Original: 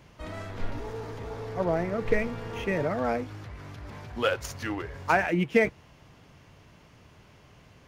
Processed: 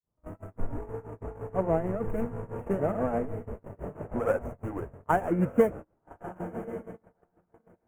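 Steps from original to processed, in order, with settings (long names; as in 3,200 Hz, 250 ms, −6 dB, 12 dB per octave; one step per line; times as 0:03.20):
running median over 25 samples
on a send: feedback delay with all-pass diffusion 1,184 ms, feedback 54%, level −10 dB
on the sum: granular cloud 252 ms, grains 6.2 per second, spray 32 ms, pitch spread up and down by 0 semitones
noise gate −39 dBFS, range −30 dB
Butterworth band-reject 4,100 Hz, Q 0.58
level +2.5 dB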